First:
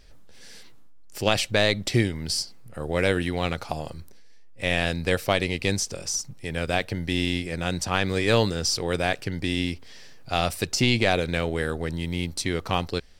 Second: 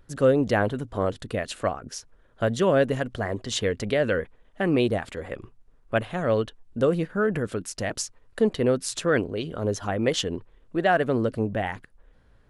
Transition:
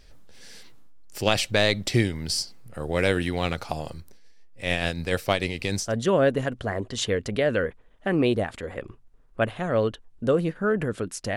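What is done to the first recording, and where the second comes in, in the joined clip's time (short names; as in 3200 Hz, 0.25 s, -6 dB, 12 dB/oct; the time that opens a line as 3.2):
first
3.97–5.97 tremolo 6.7 Hz, depth 43%
5.89 switch to second from 2.43 s, crossfade 0.16 s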